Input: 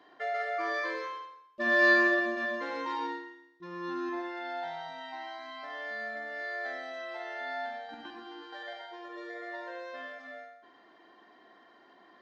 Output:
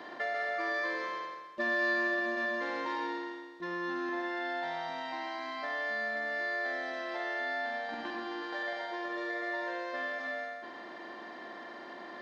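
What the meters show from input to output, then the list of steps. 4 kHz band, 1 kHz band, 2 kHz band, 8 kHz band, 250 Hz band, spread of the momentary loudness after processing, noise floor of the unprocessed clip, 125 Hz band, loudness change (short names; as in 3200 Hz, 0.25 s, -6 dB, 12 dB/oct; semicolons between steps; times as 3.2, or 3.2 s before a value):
0.0 dB, 0.0 dB, -2.0 dB, n/a, -1.5 dB, 14 LU, -60 dBFS, 0.0 dB, -2.5 dB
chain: per-bin compression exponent 0.6; compressor 2:1, threshold -34 dBFS, peak gain reduction 9 dB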